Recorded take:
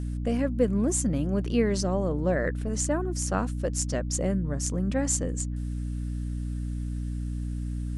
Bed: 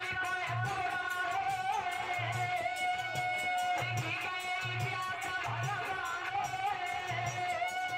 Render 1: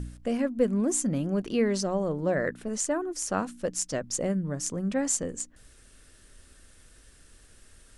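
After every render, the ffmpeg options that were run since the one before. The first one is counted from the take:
ffmpeg -i in.wav -af "bandreject=frequency=60:width_type=h:width=4,bandreject=frequency=120:width_type=h:width=4,bandreject=frequency=180:width_type=h:width=4,bandreject=frequency=240:width_type=h:width=4,bandreject=frequency=300:width_type=h:width=4" out.wav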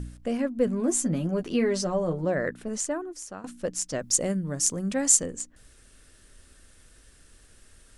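ffmpeg -i in.wav -filter_complex "[0:a]asettb=1/sr,asplit=3[link_01][link_02][link_03];[link_01]atrim=end=0.664[link_04];[link_02]atrim=start=0.66:end=2.25,asetpts=PTS-STARTPTS,afade=type=in:duration=0.004:curve=qsin,afade=type=out:start_time=1.586:duration=0.004:curve=qsin,asplit=2[link_05][link_06];[link_06]adelay=12,volume=-4dB[link_07];[link_05][link_07]amix=inputs=2:normalize=0,atrim=end_sample=70119[link_08];[link_03]atrim=start=2.246[link_09];[link_04][link_08]acrossfade=duration=0.004:curve1=hsin:curve2=qsin[link_10];[link_10][link_09]acrossfade=duration=0.004:curve1=qsin:curve2=hsin,asettb=1/sr,asplit=3[link_11][link_12][link_13];[link_11]atrim=end=3.994[link_14];[link_12]atrim=start=3.99:end=5.26,asetpts=PTS-STARTPTS,afade=type=in:duration=0.004:curve=qsin,afade=type=out:start_time=1.266:duration=0.004:curve=qsin,highshelf=frequency=3900:gain=11[link_15];[link_13]atrim=start=5.256[link_16];[link_14][link_15]acrossfade=duration=0.004:curve1=hsin:curve2=qsin[link_17];[link_17][link_16]acrossfade=duration=0.004:curve1=qsin:curve2=hsin,asplit=2[link_18][link_19];[link_18]atrim=end=3.44,asetpts=PTS-STARTPTS,afade=type=out:start_time=2.78:duration=0.66:silence=0.141254[link_20];[link_19]atrim=start=3.44,asetpts=PTS-STARTPTS,afade=type=in:duration=0.004:curve=hsin:silence=0.141254[link_21];[link_20][link_21]concat=n=2:v=0:a=1" out.wav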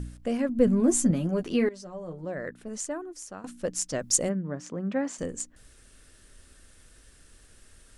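ffmpeg -i in.wav -filter_complex "[0:a]asettb=1/sr,asplit=3[link_01][link_02][link_03];[link_01]atrim=end=0.494[link_04];[link_02]atrim=start=0.49:end=1.11,asetpts=PTS-STARTPTS,afade=type=in:duration=0.004:curve=qsin,afade=type=out:start_time=0.616:duration=0.004:curve=qsin,lowshelf=frequency=210:gain=11[link_05];[link_03]atrim=start=1.106[link_06];[link_04][link_05]acrossfade=duration=0.004:curve1=hsin:curve2=qsin[link_07];[link_07][link_06]acrossfade=duration=0.004:curve1=qsin:curve2=hsin,asplit=3[link_08][link_09][link_10];[link_08]afade=type=out:start_time=4.28:duration=0.02[link_11];[link_09]highpass=160,lowpass=2000,afade=type=in:start_time=4.28:duration=0.02,afade=type=out:start_time=5.18:duration=0.02[link_12];[link_10]afade=type=in:start_time=5.18:duration=0.02[link_13];[link_11][link_12][link_13]amix=inputs=3:normalize=0,asplit=2[link_14][link_15];[link_14]atrim=end=1.69,asetpts=PTS-STARTPTS,afade=type=out:start_time=1.686:duration=0.004:curve=hsin:silence=0.11885[link_16];[link_15]atrim=start=1.69,asetpts=PTS-STARTPTS,afade=type=in:duration=2.04:silence=0.11885[link_17];[link_16][link_17]concat=n=2:v=0:a=1" out.wav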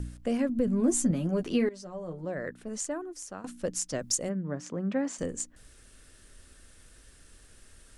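ffmpeg -i in.wav -filter_complex "[0:a]alimiter=limit=-16dB:level=0:latency=1:release=360,acrossover=split=470|3000[link_01][link_02][link_03];[link_02]acompressor=threshold=-33dB:ratio=6[link_04];[link_01][link_04][link_03]amix=inputs=3:normalize=0" out.wav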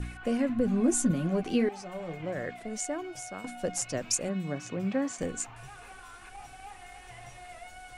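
ffmpeg -i in.wav -i bed.wav -filter_complex "[1:a]volume=-12.5dB[link_01];[0:a][link_01]amix=inputs=2:normalize=0" out.wav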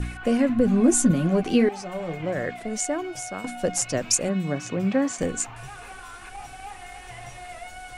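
ffmpeg -i in.wav -af "volume=7dB" out.wav

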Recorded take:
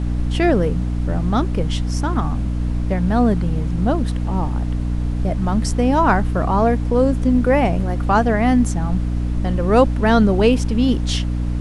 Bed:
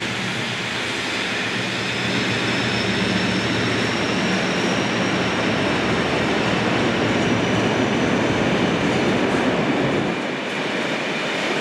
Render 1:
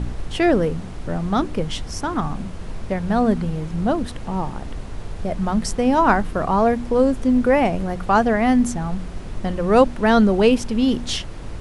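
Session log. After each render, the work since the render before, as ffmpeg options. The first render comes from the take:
ffmpeg -i in.wav -af "bandreject=frequency=60:width_type=h:width=4,bandreject=frequency=120:width_type=h:width=4,bandreject=frequency=180:width_type=h:width=4,bandreject=frequency=240:width_type=h:width=4,bandreject=frequency=300:width_type=h:width=4" out.wav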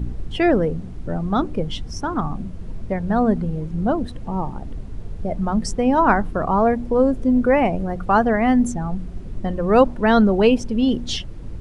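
ffmpeg -i in.wav -af "afftdn=noise_reduction=12:noise_floor=-32" out.wav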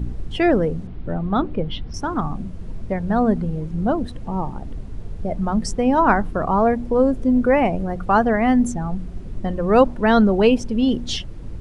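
ffmpeg -i in.wav -filter_complex "[0:a]asettb=1/sr,asplit=3[link_01][link_02][link_03];[link_01]atrim=end=0.874[link_04];[link_02]atrim=start=0.87:end=1.94,asetpts=PTS-STARTPTS,afade=type=in:duration=0.004:curve=qsin,afade=type=out:start_time=1.066:duration=0.004:curve=qsin,lowpass=frequency=4000:width=0.5412,lowpass=frequency=4000:width=1.3066[link_05];[link_03]atrim=start=1.936[link_06];[link_04][link_05]acrossfade=duration=0.004:curve1=hsin:curve2=qsin[link_07];[link_07][link_06]acrossfade=duration=0.004:curve1=qsin:curve2=hsin" out.wav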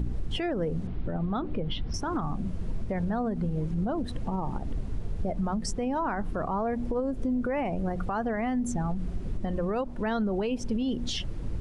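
ffmpeg -i in.wav -af "acompressor=threshold=-22dB:ratio=6,alimiter=limit=-21.5dB:level=0:latency=1:release=81" out.wav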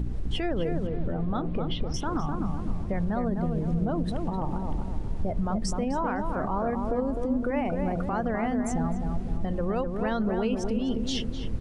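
ffmpeg -i in.wav -filter_complex "[0:a]asplit=2[link_01][link_02];[link_02]adelay=255,lowpass=frequency=1400:poles=1,volume=-4dB,asplit=2[link_03][link_04];[link_04]adelay=255,lowpass=frequency=1400:poles=1,volume=0.49,asplit=2[link_05][link_06];[link_06]adelay=255,lowpass=frequency=1400:poles=1,volume=0.49,asplit=2[link_07][link_08];[link_08]adelay=255,lowpass=frequency=1400:poles=1,volume=0.49,asplit=2[link_09][link_10];[link_10]adelay=255,lowpass=frequency=1400:poles=1,volume=0.49,asplit=2[link_11][link_12];[link_12]adelay=255,lowpass=frequency=1400:poles=1,volume=0.49[link_13];[link_01][link_03][link_05][link_07][link_09][link_11][link_13]amix=inputs=7:normalize=0" out.wav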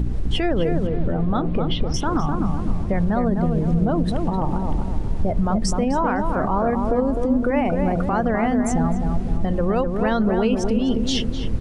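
ffmpeg -i in.wav -af "volume=7.5dB" out.wav

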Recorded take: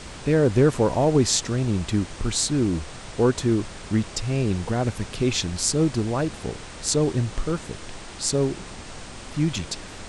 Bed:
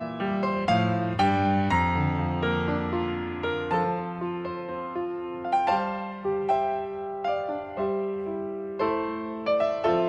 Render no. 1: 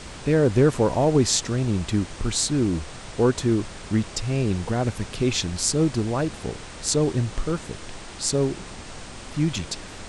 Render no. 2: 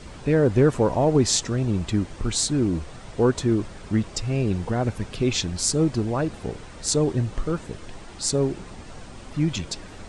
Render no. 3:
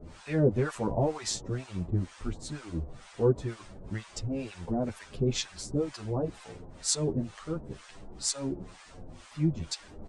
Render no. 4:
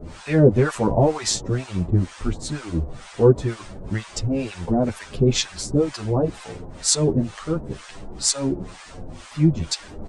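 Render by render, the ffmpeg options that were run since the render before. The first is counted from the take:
ffmpeg -i in.wav -af anull out.wav
ffmpeg -i in.wav -af "afftdn=noise_reduction=8:noise_floor=-40" out.wav
ffmpeg -i in.wav -filter_complex "[0:a]acrossover=split=810[link_01][link_02];[link_01]aeval=exprs='val(0)*(1-1/2+1/2*cos(2*PI*2.1*n/s))':channel_layout=same[link_03];[link_02]aeval=exprs='val(0)*(1-1/2-1/2*cos(2*PI*2.1*n/s))':channel_layout=same[link_04];[link_03][link_04]amix=inputs=2:normalize=0,asplit=2[link_05][link_06];[link_06]adelay=9.3,afreqshift=-0.43[link_07];[link_05][link_07]amix=inputs=2:normalize=1" out.wav
ffmpeg -i in.wav -af "volume=10dB,alimiter=limit=-2dB:level=0:latency=1" out.wav

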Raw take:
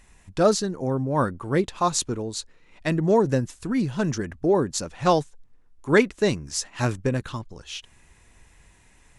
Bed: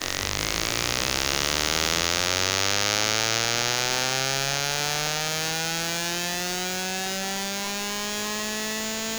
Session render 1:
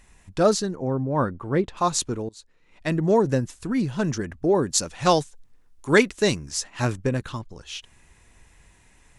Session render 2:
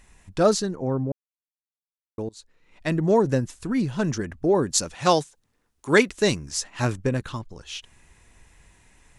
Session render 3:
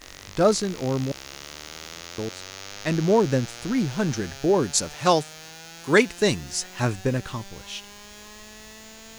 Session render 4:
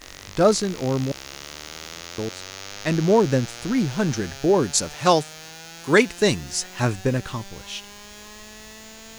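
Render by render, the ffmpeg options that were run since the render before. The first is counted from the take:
ffmpeg -i in.wav -filter_complex "[0:a]asettb=1/sr,asplit=3[link_01][link_02][link_03];[link_01]atrim=end=0.754[link_04];[link_02]atrim=start=0.75:end=1.77,asetpts=PTS-STARTPTS,afade=type=in:duration=0.004:curve=qsin,afade=type=out:start_time=1.016:duration=0.004:curve=qsin,aemphasis=mode=reproduction:type=75kf[link_05];[link_03]atrim=start=1.766[link_06];[link_04][link_05]acrossfade=duration=0.004:curve1=hsin:curve2=qsin[link_07];[link_07][link_06]acrossfade=duration=0.004:curve1=qsin:curve2=hsin,asettb=1/sr,asplit=3[link_08][link_09][link_10];[link_08]atrim=end=4.634[link_11];[link_09]atrim=start=4.63:end=6.46,asetpts=PTS-STARTPTS,afade=type=in:duration=0.004:curve=qsin,afade=type=out:start_time=1.826:duration=0.004:curve=qsin,highshelf=frequency=2700:gain=8[link_12];[link_10]atrim=start=6.456[link_13];[link_11][link_12]acrossfade=duration=0.004:curve1=hsin:curve2=qsin[link_14];[link_14][link_13]acrossfade=duration=0.004:curve1=qsin:curve2=hsin,asplit=2[link_15][link_16];[link_15]atrim=end=2.29,asetpts=PTS-STARTPTS,afade=type=out:start_time=2.286:duration=0.004:curve=hsin:silence=0.0794328[link_17];[link_16]atrim=start=2.29,asetpts=PTS-STARTPTS,afade=type=in:duration=0.67:silence=0.0794328[link_18];[link_17][link_18]concat=n=2:v=0:a=1" out.wav
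ffmpeg -i in.wav -filter_complex "[0:a]asettb=1/sr,asplit=3[link_01][link_02][link_03];[link_01]atrim=end=4.944[link_04];[link_02]atrim=start=4.94:end=6.09,asetpts=PTS-STARTPTS,afade=type=in:duration=0.004:curve=qsin,afade=type=out:start_time=1.146:duration=0.004:curve=qsin,highpass=frequency=130:poles=1[link_05];[link_03]atrim=start=6.086[link_06];[link_04][link_05]acrossfade=duration=0.004:curve1=hsin:curve2=qsin[link_07];[link_07][link_06]acrossfade=duration=0.004:curve1=qsin:curve2=hsin,asplit=3[link_08][link_09][link_10];[link_08]atrim=end=1.12,asetpts=PTS-STARTPTS,afade=type=out:start_time=1.116:duration=0.004:curve=hsin[link_11];[link_09]atrim=start=1.12:end=2.18,asetpts=PTS-STARTPTS,volume=0[link_12];[link_10]atrim=start=2.18,asetpts=PTS-STARTPTS,afade=type=in:duration=0.004:curve=hsin[link_13];[link_11][link_12][link_13]concat=n=3:v=0:a=1" out.wav
ffmpeg -i in.wav -i bed.wav -filter_complex "[1:a]volume=-15.5dB[link_01];[0:a][link_01]amix=inputs=2:normalize=0" out.wav
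ffmpeg -i in.wav -af "volume=2dB,alimiter=limit=-3dB:level=0:latency=1" out.wav

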